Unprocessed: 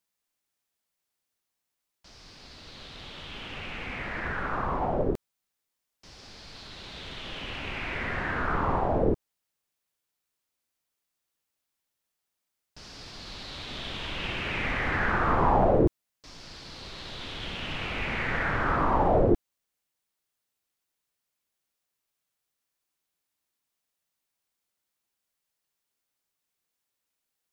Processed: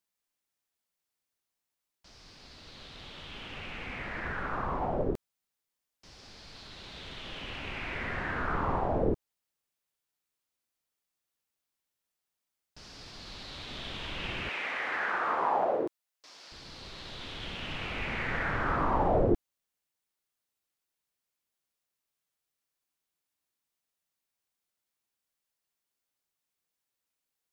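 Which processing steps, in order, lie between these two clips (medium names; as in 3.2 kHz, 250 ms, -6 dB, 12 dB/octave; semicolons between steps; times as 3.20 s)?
14.49–16.52 s: high-pass 500 Hz 12 dB/octave; trim -3.5 dB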